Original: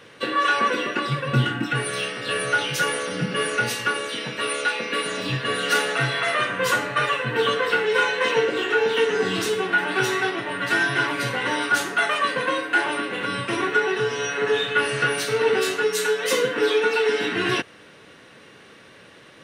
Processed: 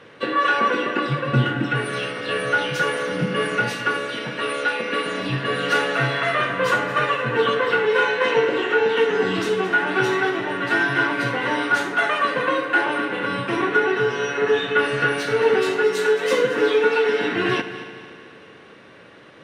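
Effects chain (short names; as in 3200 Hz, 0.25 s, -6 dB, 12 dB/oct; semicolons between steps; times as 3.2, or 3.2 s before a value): LPF 2000 Hz 6 dB/oct; low shelf 72 Hz -6.5 dB; multi-head echo 74 ms, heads first and third, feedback 64%, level -15 dB; gain +3 dB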